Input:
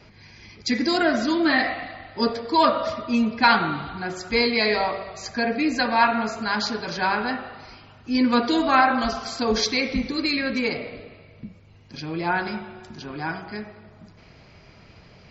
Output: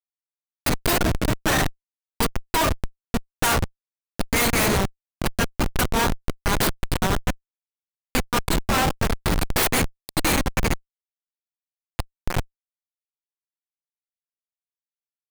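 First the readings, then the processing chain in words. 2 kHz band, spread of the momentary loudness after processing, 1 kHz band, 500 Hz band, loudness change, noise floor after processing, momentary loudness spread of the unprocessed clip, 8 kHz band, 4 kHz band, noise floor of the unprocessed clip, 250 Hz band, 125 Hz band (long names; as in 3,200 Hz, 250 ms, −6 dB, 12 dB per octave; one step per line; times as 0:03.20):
−2.5 dB, 10 LU, −4.0 dB, −3.0 dB, −1.0 dB, below −85 dBFS, 16 LU, can't be measured, −1.5 dB, −51 dBFS, −4.5 dB, +11.0 dB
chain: stylus tracing distortion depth 0.31 ms
spectral tilt +4.5 dB per octave
comparator with hysteresis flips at −13.5 dBFS
level +1.5 dB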